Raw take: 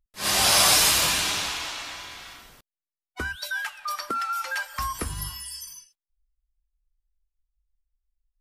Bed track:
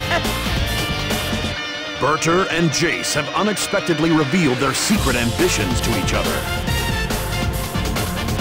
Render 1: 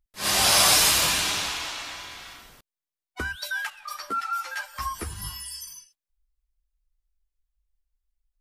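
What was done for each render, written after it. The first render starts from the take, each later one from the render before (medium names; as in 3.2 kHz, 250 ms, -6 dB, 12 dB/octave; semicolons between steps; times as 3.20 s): 3.70–5.24 s: three-phase chorus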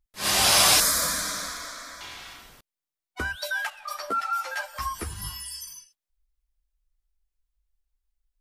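0.80–2.01 s: static phaser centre 560 Hz, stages 8; 3.21–4.78 s: peaking EQ 620 Hz +11.5 dB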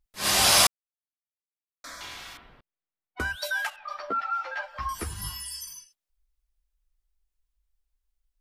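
0.67–1.84 s: mute; 2.37–3.20 s: distance through air 400 m; 3.76–4.89 s: distance through air 250 m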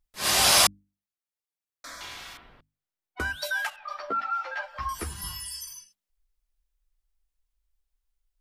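hum notches 50/100/150/200/250/300 Hz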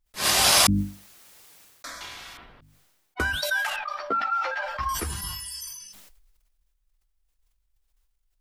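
transient shaper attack +5 dB, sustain +1 dB; decay stretcher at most 36 dB/s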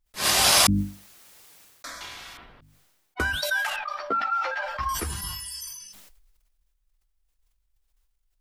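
no audible change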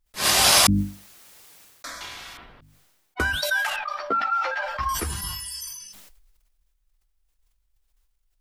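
trim +2 dB; peak limiter -2 dBFS, peak gain reduction 1.5 dB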